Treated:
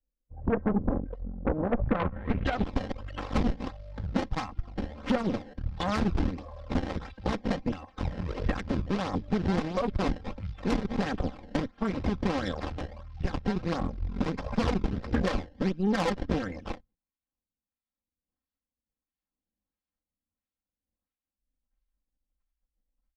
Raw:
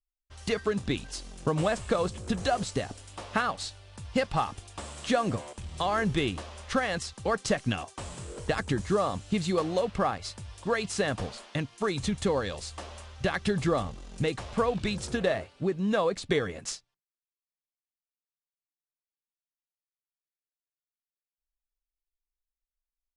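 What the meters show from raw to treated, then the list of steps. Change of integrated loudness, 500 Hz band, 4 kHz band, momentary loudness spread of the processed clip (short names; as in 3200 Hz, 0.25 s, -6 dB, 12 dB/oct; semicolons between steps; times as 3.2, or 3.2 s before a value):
-1.0 dB, -4.0 dB, -6.0 dB, 9 LU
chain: bin magnitudes rounded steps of 30 dB; random-step tremolo; decimation with a swept rate 21×, swing 160% 1.5 Hz; spectral noise reduction 6 dB; AGC gain up to 6.5 dB; tone controls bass +15 dB, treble -6 dB; compressor 3:1, threshold -24 dBFS, peak gain reduction 12.5 dB; comb 3.8 ms, depth 99%; low-pass sweep 540 Hz -> 5000 Hz, 1.69–2.72; high shelf 4400 Hz -9.5 dB; added harmonics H 8 -15 dB, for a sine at -7.5 dBFS; gain -6 dB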